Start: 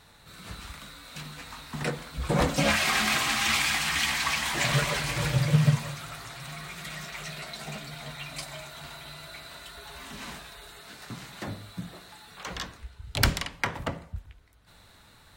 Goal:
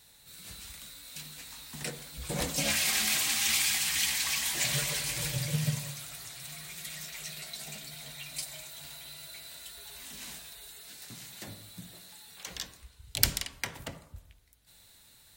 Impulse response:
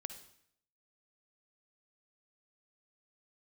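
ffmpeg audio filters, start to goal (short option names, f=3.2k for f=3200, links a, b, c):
-filter_complex "[0:a]asplit=2[a][b];[b]lowpass=f=1.3k:w=0.5412,lowpass=f=1.3k:w=1.3066[c];[1:a]atrim=start_sample=2205,asetrate=32634,aresample=44100[d];[c][d]afir=irnorm=-1:irlink=0,volume=-2.5dB[e];[a][e]amix=inputs=2:normalize=0,crystalizer=i=7:c=0,volume=-14dB"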